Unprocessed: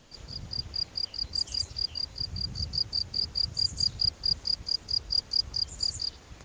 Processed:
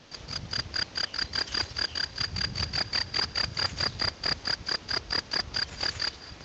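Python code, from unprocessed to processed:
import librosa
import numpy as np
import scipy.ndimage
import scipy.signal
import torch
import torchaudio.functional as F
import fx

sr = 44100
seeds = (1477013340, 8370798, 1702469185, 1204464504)

y = fx.cvsd(x, sr, bps=32000)
y = fx.highpass(y, sr, hz=98.0, slope=6)
y = fx.echo_thinned(y, sr, ms=218, feedback_pct=82, hz=420.0, wet_db=-21.5)
y = y * librosa.db_to_amplitude(4.5)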